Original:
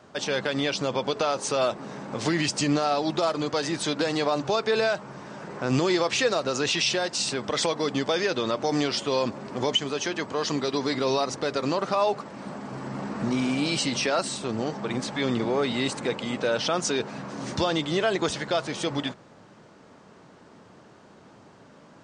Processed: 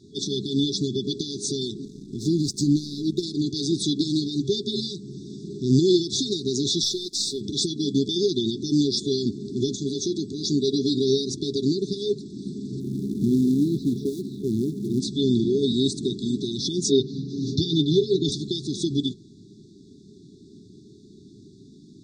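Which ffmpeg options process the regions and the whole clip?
-filter_complex "[0:a]asettb=1/sr,asplit=3[s0][s1][s2];[s0]atrim=end=1.854[s3];[s1]atrim=start=1.85:end=3.23,asetpts=PTS-STARTPTS,afade=t=in:d=0.004:c=qsin,afade=t=out:st=1.376:d=0.004:c=qsin,equalizer=f=1800:w=0.8:g=-15,aeval=exprs='sgn(val(0))*max(abs(val(0))-0.00794,0)':c=same[s4];[s2]atrim=start=3.226[s5];[s3][s4]acrossfade=d=0.004:c1=hsin:c2=qsin[s6];[s6][s5]acrossfade=d=0.004:c1=qsin:c2=hsin,asettb=1/sr,asplit=3[s7][s8][s9];[s7]atrim=end=6.834[s10];[s8]atrim=start=6.83:end=7.41,asetpts=PTS-STARTPTS,afade=t=in:d=0.004:c=qsin,afade=t=out:st=0.576:d=0.004:c=qsin,highpass=f=420:p=1,aeval=exprs='sgn(val(0))*max(abs(val(0))-0.00422,0)':c=same,aeval=exprs='(tanh(7.08*val(0)+0.15)-tanh(0.15))/7.08':c=same[s11];[s9]atrim=start=7.406[s12];[s10][s11]acrossfade=d=0.004:c1=hsin:c2=qsin[s13];[s13][s12]acrossfade=d=0.004:c1=qsin:c2=hsin,asettb=1/sr,asplit=3[s14][s15][s16];[s14]atrim=end=12.804[s17];[s15]atrim=start=12.8:end=15,asetpts=PTS-STARTPTS,afade=t=in:d=0.004:c=qsin,afade=t=out:st=2.196:d=0.004:c=qsin,lowpass=1200,acrusher=bits=5:mode=log:mix=0:aa=0.000001[s18];[s16]atrim=start=14.996[s19];[s17][s18]acrossfade=d=0.004:c1=hsin:c2=qsin[s20];[s20][s19]acrossfade=d=0.004:c1=qsin:c2=hsin,asettb=1/sr,asplit=3[s21][s22][s23];[s21]atrim=end=16.914[s24];[s22]atrim=start=16.91:end=18.32,asetpts=PTS-STARTPTS,afade=t=in:d=0.004:c=qsin,afade=t=out:st=1.406:d=0.004:c=qsin,lowpass=f=5500:w=0.5412,lowpass=f=5500:w=1.3066,aecho=1:1:7.2:0.63,atrim=end_sample=62181[s25];[s23]atrim=start=18.316[s26];[s24][s25]acrossfade=d=0.004:c1=hsin:c2=qsin[s27];[s27][s26]acrossfade=d=0.004:c1=qsin:c2=hsin,afftfilt=real='re*(1-between(b*sr/4096,430,3400))':imag='im*(1-between(b*sr/4096,430,3400))':win_size=4096:overlap=0.75,highshelf=f=8800:g=-11.5,volume=2"

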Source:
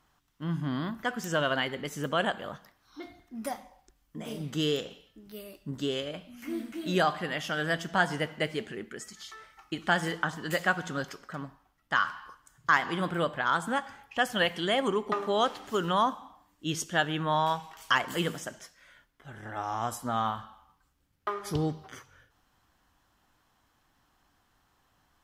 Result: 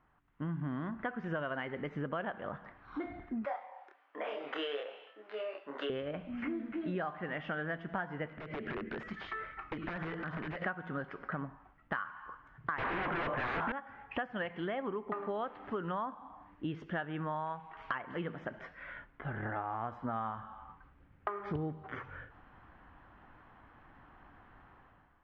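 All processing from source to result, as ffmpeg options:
-filter_complex "[0:a]asettb=1/sr,asplit=3[s0][s1][s2];[s0]atrim=end=3.454[s3];[s1]atrim=start=3.45:end=5.9,asetpts=PTS-STARTPTS,afade=t=in:d=0.004:c=qsin,afade=t=out:st=2.446:d=0.004:c=qsin,highpass=f=530:w=0.5412,highpass=f=530:w=1.3066,asplit=2[s4][s5];[s5]adelay=28,volume=0.794[s6];[s4][s6]amix=inputs=2:normalize=0,atrim=end_sample=108045[s7];[s2]atrim=start=5.896[s8];[s3][s7]acrossfade=d=0.004:c1=hsin:c2=qsin[s9];[s9][s8]acrossfade=d=0.004:c1=qsin:c2=hsin,asettb=1/sr,asplit=3[s10][s11][s12];[s10]atrim=end=8.284[s13];[s11]atrim=start=8.28:end=10.62,asetpts=PTS-STARTPTS,afade=t=in:d=0.004:c=qsin,afade=t=out:st=2.336:d=0.004:c=qsin,equalizer=f=850:t=o:w=0.39:g=-10.5,acompressor=threshold=0.00891:ratio=10:attack=3.2:release=140:knee=1:detection=peak,aeval=exprs='(mod(84.1*val(0)+1,2)-1)/84.1':c=same[s14];[s12]atrim=start=10.616[s15];[s13][s14]acrossfade=d=0.004:c1=hsin:c2=qsin[s16];[s16][s15]acrossfade=d=0.004:c1=qsin:c2=hsin,asettb=1/sr,asplit=3[s17][s18][s19];[s17]atrim=end=12.784[s20];[s18]atrim=start=12.78:end=13.72,asetpts=PTS-STARTPTS,afade=t=in:d=0.004:c=qsin,afade=t=out:st=0.936:d=0.004:c=qsin,asplit=2[s21][s22];[s22]highpass=f=720:p=1,volume=3.55,asoftclip=type=tanh:threshold=0.188[s23];[s21][s23]amix=inputs=2:normalize=0,lowpass=f=2100:p=1,volume=0.501,aeval=exprs='0.168*sin(PI/2*6.31*val(0)/0.168)':c=same,equalizer=f=180:w=4.5:g=-5.5[s24];[s19]atrim=start=13.716[s25];[s20][s24]acrossfade=d=0.004:c1=hsin:c2=qsin[s26];[s26][s25]acrossfade=d=0.004:c1=qsin:c2=hsin,dynaudnorm=f=110:g=9:m=4.47,lowpass=f=2200:w=0.5412,lowpass=f=2200:w=1.3066,acompressor=threshold=0.0178:ratio=6,volume=0.891"

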